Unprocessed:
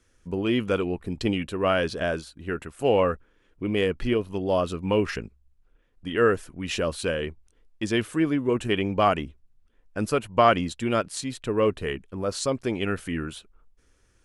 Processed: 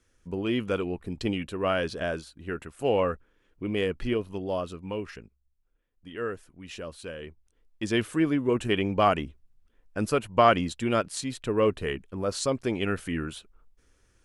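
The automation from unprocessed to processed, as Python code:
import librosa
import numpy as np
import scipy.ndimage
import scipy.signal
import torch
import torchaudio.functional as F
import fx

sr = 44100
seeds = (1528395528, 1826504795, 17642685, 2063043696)

y = fx.gain(x, sr, db=fx.line((4.25, -3.5), (5.11, -12.0), (7.12, -12.0), (7.97, -1.0)))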